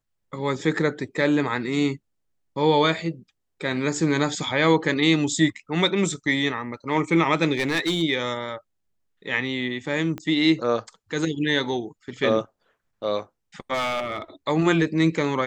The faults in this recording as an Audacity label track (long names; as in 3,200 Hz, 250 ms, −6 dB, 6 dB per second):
7.540000	8.030000	clipping −18.5 dBFS
10.180000	10.180000	click −19 dBFS
13.730000	14.220000	clipping −22 dBFS